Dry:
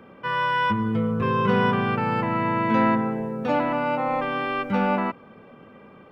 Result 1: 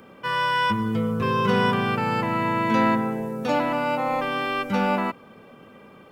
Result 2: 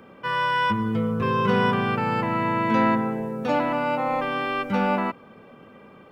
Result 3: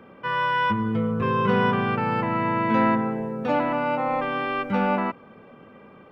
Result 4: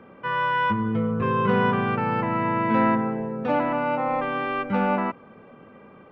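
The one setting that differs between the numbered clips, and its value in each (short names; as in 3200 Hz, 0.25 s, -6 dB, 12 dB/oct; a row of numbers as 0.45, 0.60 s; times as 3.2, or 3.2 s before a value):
tone controls, treble: +15, +7, -3, -13 dB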